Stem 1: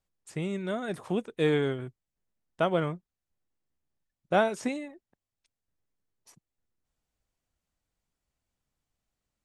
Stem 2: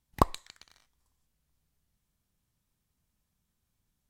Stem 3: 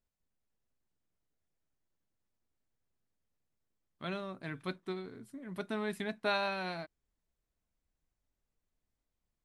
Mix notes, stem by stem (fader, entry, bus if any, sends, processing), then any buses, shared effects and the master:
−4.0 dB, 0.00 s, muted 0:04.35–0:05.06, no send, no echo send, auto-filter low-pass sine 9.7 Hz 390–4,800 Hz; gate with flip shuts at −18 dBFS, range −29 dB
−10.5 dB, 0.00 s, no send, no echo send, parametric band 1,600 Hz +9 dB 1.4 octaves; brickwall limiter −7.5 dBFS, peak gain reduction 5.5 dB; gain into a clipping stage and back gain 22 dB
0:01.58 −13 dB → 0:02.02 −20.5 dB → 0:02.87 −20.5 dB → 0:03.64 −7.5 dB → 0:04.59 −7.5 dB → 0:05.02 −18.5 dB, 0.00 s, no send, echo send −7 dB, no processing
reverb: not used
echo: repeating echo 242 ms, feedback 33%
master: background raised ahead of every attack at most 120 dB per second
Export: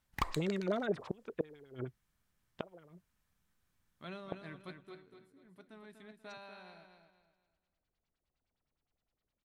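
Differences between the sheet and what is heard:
stem 2 −10.5 dB → −2.5 dB
master: missing background raised ahead of every attack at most 120 dB per second

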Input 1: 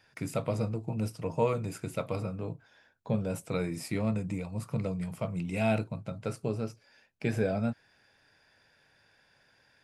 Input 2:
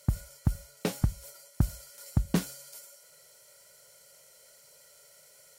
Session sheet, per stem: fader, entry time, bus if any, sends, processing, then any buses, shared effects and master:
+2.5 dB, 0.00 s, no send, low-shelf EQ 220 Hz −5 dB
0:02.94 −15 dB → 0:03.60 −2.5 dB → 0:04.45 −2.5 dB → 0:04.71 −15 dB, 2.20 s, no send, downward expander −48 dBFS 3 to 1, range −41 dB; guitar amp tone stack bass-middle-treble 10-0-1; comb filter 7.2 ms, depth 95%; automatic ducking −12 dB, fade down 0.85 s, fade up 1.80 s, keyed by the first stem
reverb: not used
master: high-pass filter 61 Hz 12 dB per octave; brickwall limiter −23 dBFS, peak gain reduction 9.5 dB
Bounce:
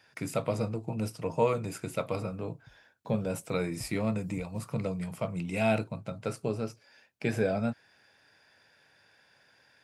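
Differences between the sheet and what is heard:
stem 2 −15.0 dB → −8.0 dB
master: missing brickwall limiter −23 dBFS, peak gain reduction 9.5 dB

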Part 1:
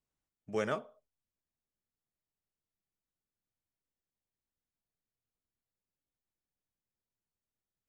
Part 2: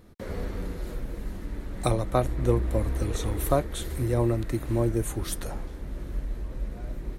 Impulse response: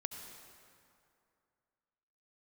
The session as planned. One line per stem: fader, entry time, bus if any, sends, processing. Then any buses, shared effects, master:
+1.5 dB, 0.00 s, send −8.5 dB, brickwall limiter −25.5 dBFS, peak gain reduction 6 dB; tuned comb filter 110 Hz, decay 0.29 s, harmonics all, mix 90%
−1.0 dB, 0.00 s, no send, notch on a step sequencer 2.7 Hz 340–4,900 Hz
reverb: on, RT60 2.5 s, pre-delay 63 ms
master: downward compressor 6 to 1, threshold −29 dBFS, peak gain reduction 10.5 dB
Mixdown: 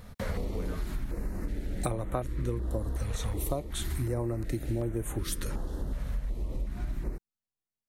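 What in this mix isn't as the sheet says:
stem 1: missing brickwall limiter −25.5 dBFS, peak gain reduction 6 dB
stem 2 −1.0 dB → +7.5 dB

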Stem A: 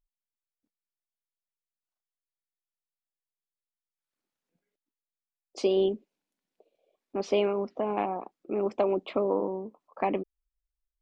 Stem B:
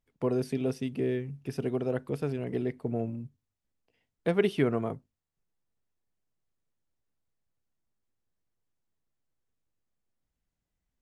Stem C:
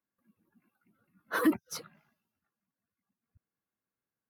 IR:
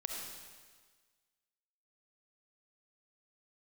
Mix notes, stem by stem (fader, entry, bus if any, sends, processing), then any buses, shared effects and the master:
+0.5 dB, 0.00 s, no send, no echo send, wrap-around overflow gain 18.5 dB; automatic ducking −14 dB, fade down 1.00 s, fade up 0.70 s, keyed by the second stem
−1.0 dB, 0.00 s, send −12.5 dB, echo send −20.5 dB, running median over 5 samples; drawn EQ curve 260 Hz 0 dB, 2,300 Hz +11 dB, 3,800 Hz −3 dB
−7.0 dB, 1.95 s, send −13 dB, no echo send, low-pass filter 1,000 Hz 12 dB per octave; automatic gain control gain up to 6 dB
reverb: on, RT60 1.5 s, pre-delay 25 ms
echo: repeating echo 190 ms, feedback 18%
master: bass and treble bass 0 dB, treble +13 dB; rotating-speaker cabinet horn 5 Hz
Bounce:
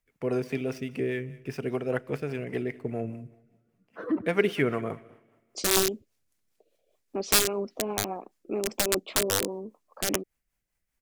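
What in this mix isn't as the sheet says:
stem B: send −12.5 dB → −19 dB
stem C: entry 1.95 s → 2.65 s

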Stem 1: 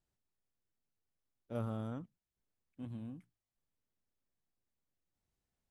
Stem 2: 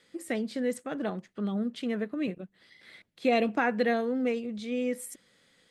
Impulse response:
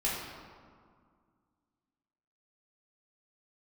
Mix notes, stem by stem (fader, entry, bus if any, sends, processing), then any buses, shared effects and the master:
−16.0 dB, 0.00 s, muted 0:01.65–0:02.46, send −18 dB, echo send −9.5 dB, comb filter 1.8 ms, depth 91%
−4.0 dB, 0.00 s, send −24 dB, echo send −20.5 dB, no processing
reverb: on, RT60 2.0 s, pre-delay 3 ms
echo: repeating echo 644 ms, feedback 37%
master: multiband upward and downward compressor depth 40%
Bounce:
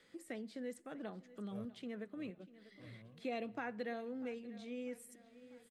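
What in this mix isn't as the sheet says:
stem 2 −4.0 dB → −14.5 dB
reverb return −7.0 dB

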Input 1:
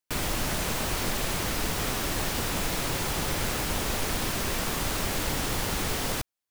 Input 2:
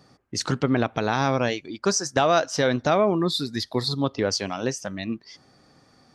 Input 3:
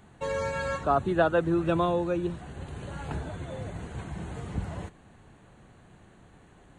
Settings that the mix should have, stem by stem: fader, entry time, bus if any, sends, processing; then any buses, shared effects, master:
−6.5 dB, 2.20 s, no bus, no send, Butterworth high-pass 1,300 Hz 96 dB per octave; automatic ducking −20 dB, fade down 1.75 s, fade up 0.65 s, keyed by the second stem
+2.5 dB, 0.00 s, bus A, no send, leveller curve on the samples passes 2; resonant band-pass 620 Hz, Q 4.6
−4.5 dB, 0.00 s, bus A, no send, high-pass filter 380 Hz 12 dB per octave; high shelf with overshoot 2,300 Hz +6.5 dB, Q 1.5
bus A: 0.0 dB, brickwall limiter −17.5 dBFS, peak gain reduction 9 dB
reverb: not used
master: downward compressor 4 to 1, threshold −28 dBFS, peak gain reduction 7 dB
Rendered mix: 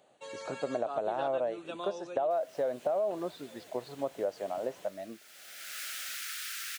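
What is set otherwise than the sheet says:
stem 2: missing leveller curve on the samples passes 2
stem 3 −4.5 dB → −12.5 dB

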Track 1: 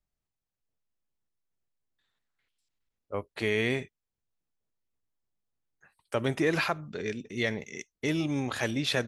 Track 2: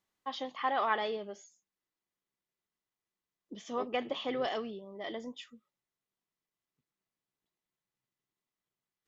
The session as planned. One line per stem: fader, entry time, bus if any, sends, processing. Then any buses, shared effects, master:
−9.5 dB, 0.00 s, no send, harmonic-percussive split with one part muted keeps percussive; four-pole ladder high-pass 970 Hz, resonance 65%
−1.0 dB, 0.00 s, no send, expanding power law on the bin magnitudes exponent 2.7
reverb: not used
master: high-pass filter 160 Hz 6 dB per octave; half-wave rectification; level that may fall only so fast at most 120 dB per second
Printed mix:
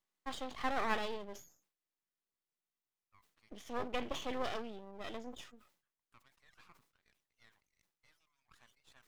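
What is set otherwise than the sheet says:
stem 1 −9.5 dB → −21.5 dB
stem 2: missing expanding power law on the bin magnitudes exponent 2.7

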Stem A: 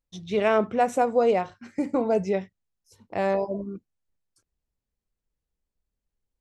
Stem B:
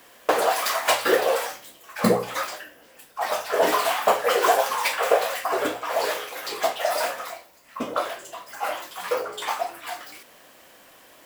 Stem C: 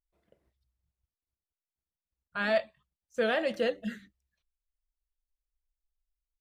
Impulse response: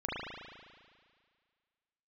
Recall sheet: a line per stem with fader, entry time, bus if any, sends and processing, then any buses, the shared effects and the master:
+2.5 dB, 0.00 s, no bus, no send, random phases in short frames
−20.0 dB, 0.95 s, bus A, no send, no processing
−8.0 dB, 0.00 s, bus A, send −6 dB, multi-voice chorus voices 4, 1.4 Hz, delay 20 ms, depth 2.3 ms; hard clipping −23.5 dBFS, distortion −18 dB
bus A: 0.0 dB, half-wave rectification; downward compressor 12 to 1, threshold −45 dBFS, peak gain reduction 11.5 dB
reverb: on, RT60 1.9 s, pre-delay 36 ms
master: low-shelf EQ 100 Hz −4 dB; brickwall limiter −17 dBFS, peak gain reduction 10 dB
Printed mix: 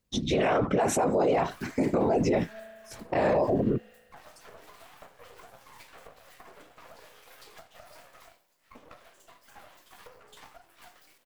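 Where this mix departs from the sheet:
stem A +2.5 dB → +10.0 dB
stem B −20.0 dB → −12.5 dB
stem C −8.0 dB → −18.0 dB

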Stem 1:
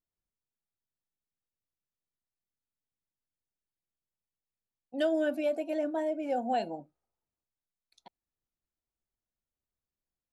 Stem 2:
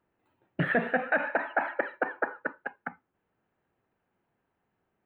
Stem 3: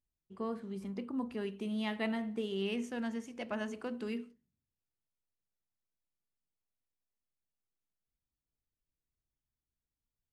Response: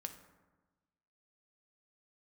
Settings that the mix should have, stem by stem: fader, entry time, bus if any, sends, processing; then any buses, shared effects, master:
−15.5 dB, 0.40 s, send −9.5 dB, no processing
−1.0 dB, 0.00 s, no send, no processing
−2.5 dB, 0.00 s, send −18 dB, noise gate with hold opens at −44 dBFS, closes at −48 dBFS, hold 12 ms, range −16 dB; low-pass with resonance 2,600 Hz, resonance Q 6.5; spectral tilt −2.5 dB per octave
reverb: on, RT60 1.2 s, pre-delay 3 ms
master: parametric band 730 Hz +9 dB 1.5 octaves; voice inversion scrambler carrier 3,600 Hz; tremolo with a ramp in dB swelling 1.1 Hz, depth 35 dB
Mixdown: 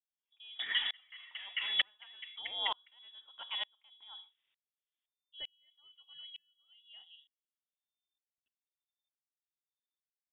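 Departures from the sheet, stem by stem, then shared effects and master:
stem 3: send off
master: missing parametric band 730 Hz +9 dB 1.5 octaves

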